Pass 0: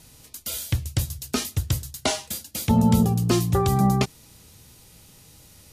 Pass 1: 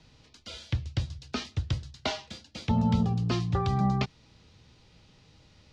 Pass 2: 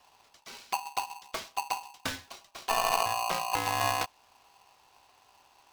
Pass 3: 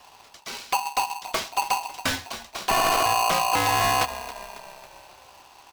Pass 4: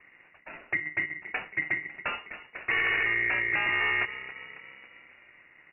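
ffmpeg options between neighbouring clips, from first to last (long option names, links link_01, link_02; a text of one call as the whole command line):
ffmpeg -i in.wav -filter_complex "[0:a]lowpass=frequency=4800:width=0.5412,lowpass=frequency=4800:width=1.3066,acrossover=split=250|560|3500[link_01][link_02][link_03][link_04];[link_02]acompressor=threshold=-36dB:ratio=6[link_05];[link_01][link_05][link_03][link_04]amix=inputs=4:normalize=0,volume=-5dB" out.wav
ffmpeg -i in.wav -af "aeval=exprs='0.211*(cos(1*acos(clip(val(0)/0.211,-1,1)))-cos(1*PI/2))+0.0299*(cos(4*acos(clip(val(0)/0.211,-1,1)))-cos(4*PI/2))':channel_layout=same,aeval=exprs='val(0)*sgn(sin(2*PI*890*n/s))':channel_layout=same,volume=-4dB" out.wav
ffmpeg -i in.wav -filter_complex "[0:a]asplit=6[link_01][link_02][link_03][link_04][link_05][link_06];[link_02]adelay=275,afreqshift=-34,volume=-18dB[link_07];[link_03]adelay=550,afreqshift=-68,volume=-23.4dB[link_08];[link_04]adelay=825,afreqshift=-102,volume=-28.7dB[link_09];[link_05]adelay=1100,afreqshift=-136,volume=-34.1dB[link_10];[link_06]adelay=1375,afreqshift=-170,volume=-39.4dB[link_11];[link_01][link_07][link_08][link_09][link_10][link_11]amix=inputs=6:normalize=0,aeval=exprs='0.15*sin(PI/2*2.24*val(0)/0.15)':channel_layout=same" out.wav
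ffmpeg -i in.wav -af "lowpass=frequency=2500:width_type=q:width=0.5098,lowpass=frequency=2500:width_type=q:width=0.6013,lowpass=frequency=2500:width_type=q:width=0.9,lowpass=frequency=2500:width_type=q:width=2.563,afreqshift=-2900,volume=-4.5dB" out.wav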